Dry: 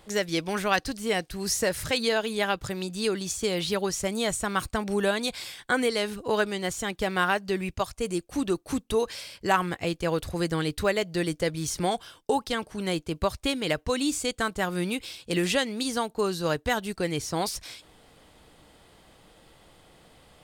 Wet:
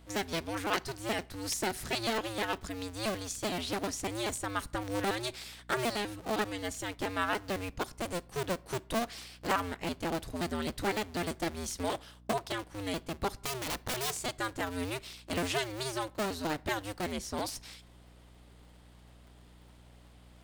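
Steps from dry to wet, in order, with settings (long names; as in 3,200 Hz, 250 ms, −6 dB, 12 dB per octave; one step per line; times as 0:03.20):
sub-harmonics by changed cycles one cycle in 2, inverted
0:13.37–0:14.19: wrap-around overflow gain 21.5 dB
mains hum 60 Hz, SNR 21 dB
on a send: convolution reverb RT60 0.60 s, pre-delay 32 ms, DRR 23 dB
on the sum: level −7 dB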